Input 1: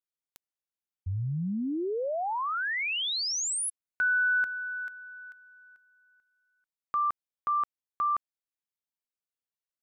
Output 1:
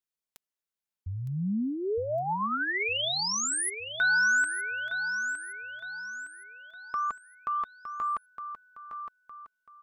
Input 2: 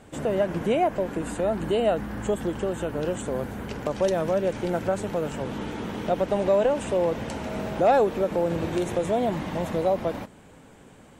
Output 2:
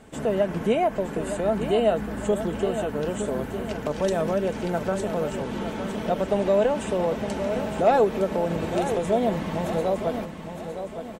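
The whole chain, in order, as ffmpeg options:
-af "aecho=1:1:4.6:0.34,aecho=1:1:912|1824|2736|3648|4560:0.355|0.149|0.0626|0.0263|0.011"

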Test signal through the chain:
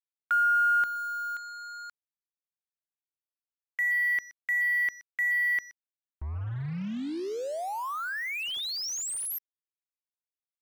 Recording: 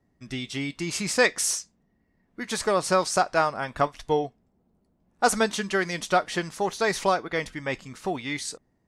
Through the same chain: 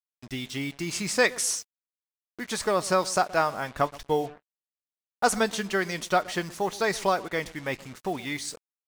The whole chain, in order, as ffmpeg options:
-filter_complex "[0:a]agate=range=-19dB:threshold=-44dB:ratio=16:detection=peak,asplit=2[a][b];[b]adelay=123,lowpass=f=1k:p=1,volume=-18.5dB,asplit=2[c][d];[d]adelay=123,lowpass=f=1k:p=1,volume=0.31,asplit=2[e][f];[f]adelay=123,lowpass=f=1k:p=1,volume=0.31[g];[a][c][e][g]amix=inputs=4:normalize=0,acrusher=bits=6:mix=0:aa=0.5,volume=-1.5dB"

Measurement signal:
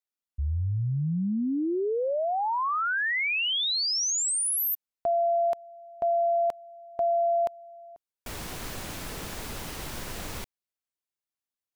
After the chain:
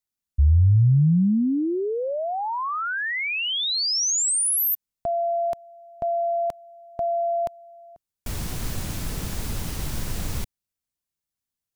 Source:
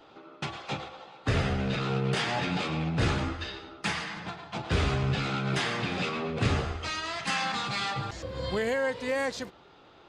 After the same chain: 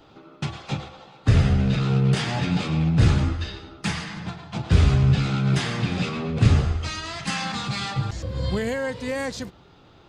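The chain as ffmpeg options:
-af "bass=f=250:g=12,treble=f=4k:g=5"

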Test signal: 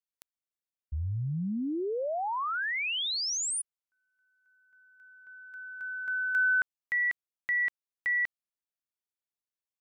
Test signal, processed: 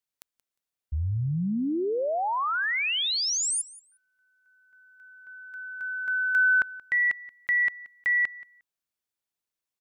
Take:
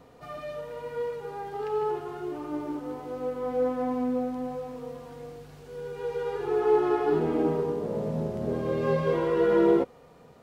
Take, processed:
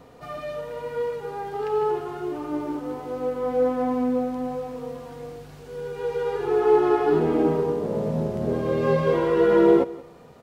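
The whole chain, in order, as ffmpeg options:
-af "aecho=1:1:178|356:0.1|0.017,volume=4.5dB"

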